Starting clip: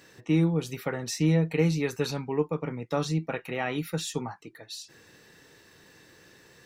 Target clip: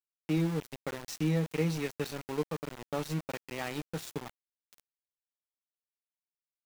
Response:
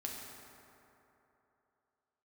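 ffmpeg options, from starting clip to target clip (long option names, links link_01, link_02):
-af "aeval=exprs='val(0)*gte(abs(val(0)),0.0316)':channel_layout=same,volume=-6dB"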